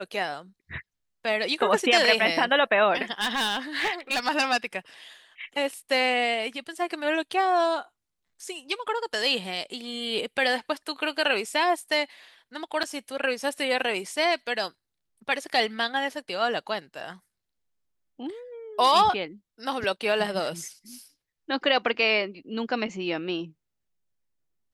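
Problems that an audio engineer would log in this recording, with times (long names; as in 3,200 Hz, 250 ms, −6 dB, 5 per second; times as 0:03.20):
0:03.12–0:04.28: clipping −21.5 dBFS
0:12.83–0:12.84: drop-out 6.1 ms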